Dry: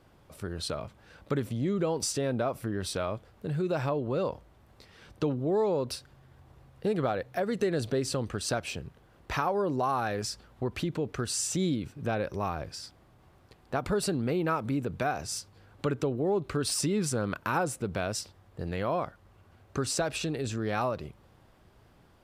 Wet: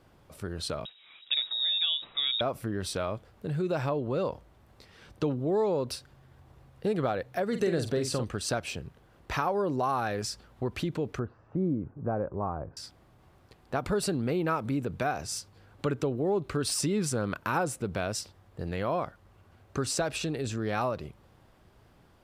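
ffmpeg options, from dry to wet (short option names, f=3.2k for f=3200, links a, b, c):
-filter_complex "[0:a]asettb=1/sr,asplit=3[a][b][c];[a]atrim=end=0.854[d];[b]atrim=start=0.85:end=2.41,asetpts=PTS-STARTPTS,afade=t=in:d=0.004:c=qsin,afade=t=out:st=1.556:d=0.004:c=qsin,lowpass=f=3.3k:t=q:w=0.5098,lowpass=f=3.3k:t=q:w=0.6013,lowpass=f=3.3k:t=q:w=0.9,lowpass=f=3.3k:t=q:w=2.563,afreqshift=-3900[e];[c]atrim=start=2.406[f];[d][e]acrossfade=d=0.004:c1=hsin:c2=qsin[g];[g][f]acrossfade=d=0.004:c1=qsin:c2=hsin,asettb=1/sr,asplit=3[h][i][j];[h]atrim=end=7.484[k];[i]atrim=start=7.48:end=8.24,asetpts=PTS-STARTPTS,afade=t=in:d=0.004:c=qsin,afade=t=out:st=0.756:d=0.004:c=qsin,asplit=2[l][m];[m]adelay=47,volume=-7.5dB[n];[l][n]amix=inputs=2:normalize=0,atrim=end_sample=33516[o];[j]atrim=start=8.236[p];[k][o]acrossfade=d=0.004:c1=hsin:c2=qsin[q];[q][p]acrossfade=d=0.004:c1=qsin:c2=hsin,asettb=1/sr,asplit=3[r][s][t];[r]atrim=end=11.194[u];[s]atrim=start=11.19:end=12.77,asetpts=PTS-STARTPTS,afade=t=in:d=0.004:c=qsin,afade=t=out:st=1.576:d=0.004:c=qsin,lowpass=f=1.2k:w=0.5412,lowpass=f=1.2k:w=1.3066[v];[t]atrim=start=12.766[w];[u][v]acrossfade=d=0.004:c1=hsin:c2=qsin[x];[x][w]acrossfade=d=0.004:c1=qsin:c2=hsin"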